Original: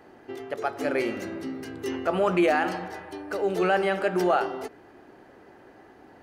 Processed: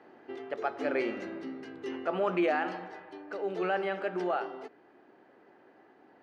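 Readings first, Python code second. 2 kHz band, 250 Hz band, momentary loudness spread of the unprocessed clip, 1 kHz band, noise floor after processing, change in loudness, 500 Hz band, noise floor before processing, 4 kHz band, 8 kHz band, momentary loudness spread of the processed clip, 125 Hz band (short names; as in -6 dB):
-6.5 dB, -6.5 dB, 15 LU, -6.5 dB, -61 dBFS, -6.5 dB, -6.5 dB, -52 dBFS, -8.0 dB, under -15 dB, 16 LU, -10.0 dB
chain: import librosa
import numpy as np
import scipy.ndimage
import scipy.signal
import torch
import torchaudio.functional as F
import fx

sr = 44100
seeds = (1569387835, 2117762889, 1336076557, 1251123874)

y = fx.rider(x, sr, range_db=4, speed_s=2.0)
y = fx.bandpass_edges(y, sr, low_hz=190.0, high_hz=3800.0)
y = F.gain(torch.from_numpy(y), -7.0).numpy()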